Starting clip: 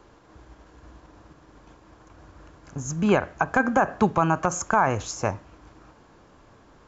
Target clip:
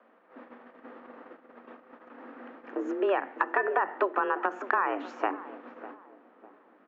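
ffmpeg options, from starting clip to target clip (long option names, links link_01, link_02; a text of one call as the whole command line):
ffmpeg -i in.wav -filter_complex "[0:a]afreqshift=190,lowpass=frequency=2600:width=0.5412,lowpass=frequency=2600:width=1.3066,acompressor=threshold=-30dB:ratio=3,lowshelf=frequency=160:gain=-11,bandreject=frequency=50:width_type=h:width=6,bandreject=frequency=100:width_type=h:width=6,bandreject=frequency=150:width_type=h:width=6,bandreject=frequency=200:width_type=h:width=6,bandreject=frequency=250:width_type=h:width=6,bandreject=frequency=300:width_type=h:width=6,bandreject=frequency=350:width_type=h:width=6,agate=range=-11dB:threshold=-52dB:ratio=16:detection=peak,asplit=2[link_01][link_02];[link_02]adelay=601,lowpass=frequency=950:poles=1,volume=-14dB,asplit=2[link_03][link_04];[link_04]adelay=601,lowpass=frequency=950:poles=1,volume=0.42,asplit=2[link_05][link_06];[link_06]adelay=601,lowpass=frequency=950:poles=1,volume=0.42,asplit=2[link_07][link_08];[link_08]adelay=601,lowpass=frequency=950:poles=1,volume=0.42[link_09];[link_01][link_03][link_05][link_07][link_09]amix=inputs=5:normalize=0,volume=4.5dB" out.wav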